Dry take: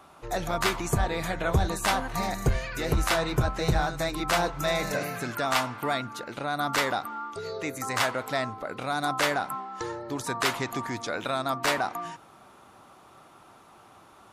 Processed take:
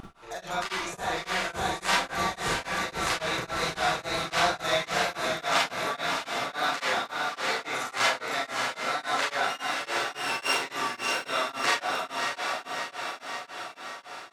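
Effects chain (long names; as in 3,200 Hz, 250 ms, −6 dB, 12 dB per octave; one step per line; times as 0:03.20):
0:09.43–0:10.50: samples sorted by size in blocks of 16 samples
spectral tilt +4.5 dB per octave
upward compression, threshold −43 dBFS
tape wow and flutter 51 cents
head-to-tape spacing loss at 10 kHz 21 dB
on a send: feedback delay with all-pass diffusion 647 ms, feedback 62%, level −3 dB
on the sum: four-comb reverb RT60 0.41 s, combs from 33 ms, DRR −4.5 dB
tremolo along a rectified sine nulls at 3.6 Hz
level −2.5 dB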